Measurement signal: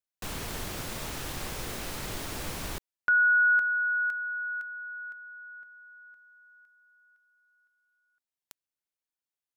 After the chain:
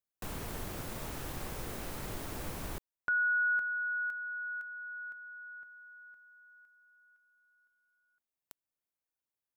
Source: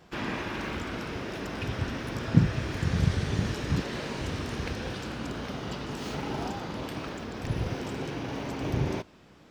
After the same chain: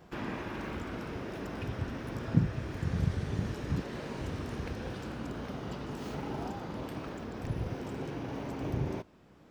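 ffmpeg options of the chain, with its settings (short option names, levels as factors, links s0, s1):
-filter_complex "[0:a]asplit=2[s0][s1];[s1]acompressor=threshold=0.0112:ratio=6:attack=5.8:release=832:detection=rms,volume=1.26[s2];[s0][s2]amix=inputs=2:normalize=0,equalizer=f=4300:t=o:w=2.7:g=-7,volume=0.501"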